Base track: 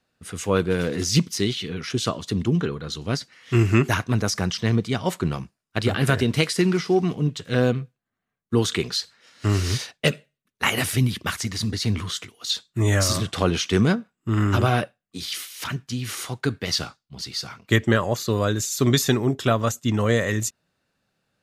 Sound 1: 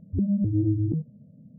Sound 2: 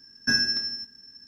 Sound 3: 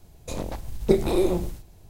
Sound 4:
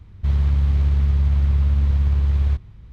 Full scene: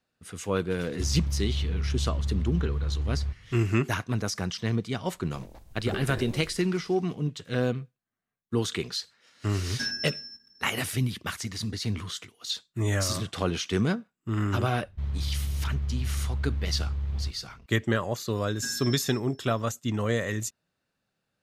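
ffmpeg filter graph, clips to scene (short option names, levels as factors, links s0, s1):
-filter_complex "[4:a]asplit=2[s0][s1];[2:a]asplit=2[s2][s3];[0:a]volume=0.473[s4];[s0]atrim=end=2.92,asetpts=PTS-STARTPTS,volume=0.282,afade=t=in:d=0.004:c=hsin,afade=t=out:st=2.916:d=0.004:c=hsin,adelay=760[s5];[3:a]atrim=end=1.89,asetpts=PTS-STARTPTS,volume=0.158,afade=t=in:d=0.004:c=hsin,afade=t=out:st=1.886:d=0.004:c=hsin,adelay=5030[s6];[s2]atrim=end=1.27,asetpts=PTS-STARTPTS,volume=0.355,afade=t=in:d=0.004:c=hsin,afade=t=out:st=1.266:d=0.004:c=hsin,adelay=9520[s7];[s1]atrim=end=2.92,asetpts=PTS-STARTPTS,volume=0.251,afade=t=in:d=0.004:c=hsin,afade=t=out:st=2.916:d=0.004:c=hsin,adelay=14740[s8];[s3]atrim=end=1.27,asetpts=PTS-STARTPTS,volume=0.237,afade=t=in:d=0.004:c=hsin,afade=t=out:st=1.266:d=0.004:c=hsin,adelay=18350[s9];[s4][s5][s6][s7][s8][s9]amix=inputs=6:normalize=0"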